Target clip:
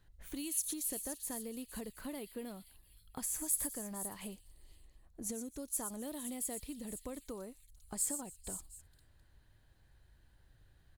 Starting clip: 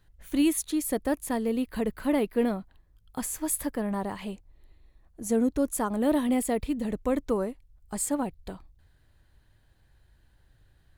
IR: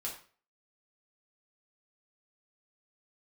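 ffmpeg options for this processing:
-filter_complex "[0:a]acrossover=split=4200[a][b];[a]acompressor=threshold=-39dB:ratio=6[c];[b]aecho=1:1:91|119|272|462|516|722:0.266|0.398|0.1|0.2|0.316|0.106[d];[c][d]amix=inputs=2:normalize=0,volume=-3.5dB"

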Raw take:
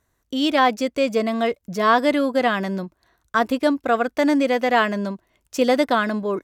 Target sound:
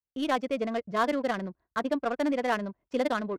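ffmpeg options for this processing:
-af "agate=range=-33dB:threshold=-55dB:ratio=3:detection=peak,atempo=1.9,adynamicsmooth=sensitivity=2:basefreq=1.5k,volume=-8.5dB"

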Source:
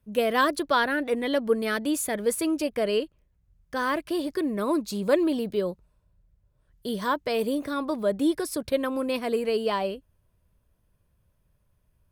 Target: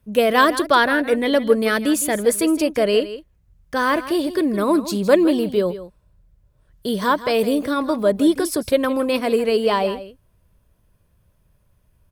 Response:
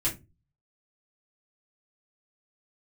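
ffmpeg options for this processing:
-af "aecho=1:1:162:0.2,volume=7.5dB"

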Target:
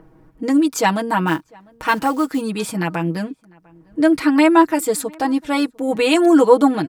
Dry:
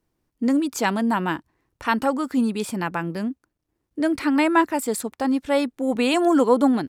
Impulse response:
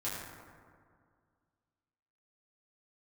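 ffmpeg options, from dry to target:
-filter_complex "[0:a]aecho=1:1:6.3:0.86,acrossover=split=1800[a][b];[a]acompressor=mode=upward:threshold=-34dB:ratio=2.5[c];[c][b]amix=inputs=2:normalize=0,asplit=3[d][e][f];[d]afade=t=out:st=1.26:d=0.02[g];[e]acrusher=bits=6:mode=log:mix=0:aa=0.000001,afade=t=in:st=1.26:d=0.02,afade=t=out:st=2.41:d=0.02[h];[f]afade=t=in:st=2.41:d=0.02[i];[g][h][i]amix=inputs=3:normalize=0,asplit=2[j][k];[k]adelay=699.7,volume=-27dB,highshelf=f=4k:g=-15.7[l];[j][l]amix=inputs=2:normalize=0,volume=2.5dB"

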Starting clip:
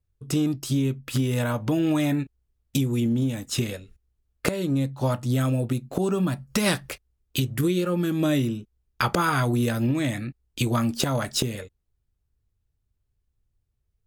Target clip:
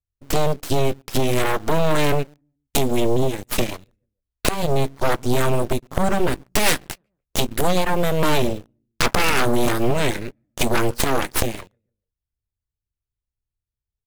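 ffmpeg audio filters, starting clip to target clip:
-filter_complex "[0:a]asplit=2[a][b];[b]adelay=145,lowpass=f=1.2k:p=1,volume=-23dB,asplit=2[c][d];[d]adelay=145,lowpass=f=1.2k:p=1,volume=0.4,asplit=2[e][f];[f]adelay=145,lowpass=f=1.2k:p=1,volume=0.4[g];[a][c][e][g]amix=inputs=4:normalize=0,apsyclip=11.5dB,asplit=2[h][i];[i]acrusher=bits=4:mix=0:aa=0.000001,volume=-5.5dB[j];[h][j]amix=inputs=2:normalize=0,aeval=exprs='1.58*(cos(1*acos(clip(val(0)/1.58,-1,1)))-cos(1*PI/2))+0.631*(cos(3*acos(clip(val(0)/1.58,-1,1)))-cos(3*PI/2))+0.501*(cos(6*acos(clip(val(0)/1.58,-1,1)))-cos(6*PI/2))':c=same,volume=-10.5dB"

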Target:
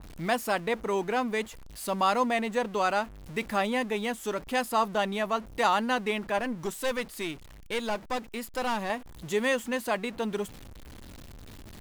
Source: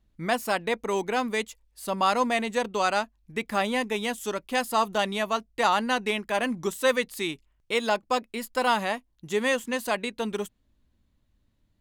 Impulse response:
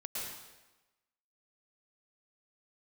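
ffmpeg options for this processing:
-filter_complex "[0:a]aeval=exprs='val(0)+0.5*0.0126*sgn(val(0))':c=same,asettb=1/sr,asplit=3[a][b][c];[a]atrim=end=6.384[d];[b]atrim=start=6.38:end=8.9,asetpts=PTS-STARTPTS,afade=t=in:d=0.004:c=qsin,afade=t=out:st=2.516:d=0.004:c=qsin,aeval=exprs='(tanh(12.6*val(0)+0.55)-tanh(0.55))/12.6':c=same[e];[c]atrim=start=8.896[f];[d][e]acrossfade=d=0.004:c1=hsin:c2=qsin[g];[g][f]acrossfade=d=0.004:c1=qsin:c2=hsin,adynamicequalizer=threshold=0.00891:dfrequency=2600:dqfactor=0.7:tfrequency=2600:tqfactor=0.7:attack=5:release=100:ratio=0.375:range=3.5:mode=cutabove:tftype=highshelf,volume=-2dB"

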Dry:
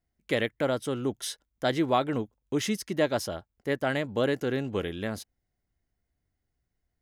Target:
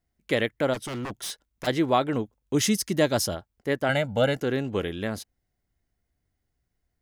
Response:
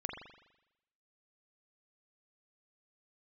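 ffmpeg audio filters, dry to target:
-filter_complex "[0:a]asplit=3[a][b][c];[a]afade=t=out:st=0.73:d=0.02[d];[b]aeval=exprs='0.0316*(abs(mod(val(0)/0.0316+3,4)-2)-1)':c=same,afade=t=in:st=0.73:d=0.02,afade=t=out:st=1.66:d=0.02[e];[c]afade=t=in:st=1.66:d=0.02[f];[d][e][f]amix=inputs=3:normalize=0,asettb=1/sr,asplit=3[g][h][i];[g]atrim=end=2.544[j];[h]atrim=start=2.54:end=3.35,asetpts=PTS-STARTPTS,afade=t=in:d=0.004:c=qsin,afade=t=out:st=0.806:d=0.004:c=qsin,bass=f=250:g=5,treble=f=4k:g=8[k];[i]atrim=start=3.346[l];[j][k]acrossfade=d=0.004:c1=hsin:c2=qsin[m];[m][l]acrossfade=d=0.004:c1=qsin:c2=hsin,asettb=1/sr,asplit=3[n][o][p];[n]atrim=end=3.894[q];[o]atrim=start=3.89:end=4.37,asetpts=PTS-STARTPTS,afade=t=in:d=0.004:c=qsin,afade=t=out:st=0.476:d=0.004:c=qsin,aecho=1:1:1.4:0.91,atrim=end_sample=21168[r];[p]atrim=start=4.366[s];[q][r]acrossfade=d=0.004:c1=hsin:c2=qsin[t];[t][s]acrossfade=d=0.004:c1=qsin:c2=hsin,volume=2.5dB"

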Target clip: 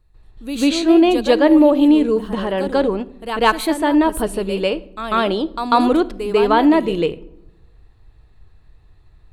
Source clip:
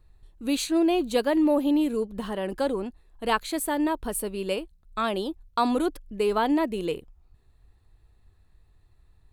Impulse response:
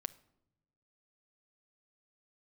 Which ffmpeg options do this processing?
-filter_complex "[0:a]asplit=2[a][b];[1:a]atrim=start_sample=2205,lowpass=4.9k,adelay=144[c];[b][c]afir=irnorm=-1:irlink=0,volume=12.5dB[d];[a][d]amix=inputs=2:normalize=0,volume=-1dB"

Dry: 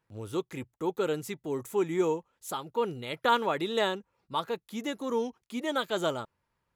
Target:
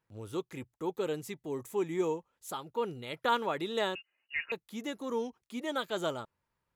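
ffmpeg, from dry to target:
-filter_complex "[0:a]asettb=1/sr,asplit=3[a][b][c];[a]atrim=end=0.954[d];[b]atrim=start=0.95:end=2.16,asetpts=PTS-STARTPTS,afade=t=in:d=0.004:c=qsin,afade=t=out:st=1.206:d=0.004:c=qsin,bandreject=f=1.4k:w=10[e];[c]atrim=start=2.156[f];[d][e]acrossfade=d=0.004:c1=hsin:c2=qsin[g];[g][f]acrossfade=d=0.004:c1=qsin:c2=hsin,asettb=1/sr,asplit=3[h][i][j];[h]atrim=end=3.954[k];[i]atrim=start=3.95:end=4.52,asetpts=PTS-STARTPTS,afade=t=in:d=0.004:c=qsin,afade=t=out:st=0.566:d=0.004:c=qsin,lowpass=f=2.6k:t=q:w=0.5098,lowpass=f=2.6k:t=q:w=0.6013,lowpass=f=2.6k:t=q:w=0.9,lowpass=f=2.6k:t=q:w=2.563,afreqshift=-3000[l];[j]atrim=start=4.516[m];[k][l]acrossfade=d=0.004:c1=hsin:c2=qsin[n];[n][m]acrossfade=d=0.004:c1=qsin:c2=hsin,volume=-4dB"

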